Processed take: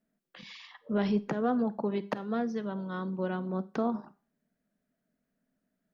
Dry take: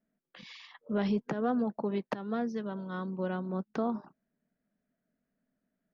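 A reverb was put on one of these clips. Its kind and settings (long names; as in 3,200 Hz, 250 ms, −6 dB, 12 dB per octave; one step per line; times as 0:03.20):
four-comb reverb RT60 0.36 s, combs from 31 ms, DRR 16.5 dB
level +1.5 dB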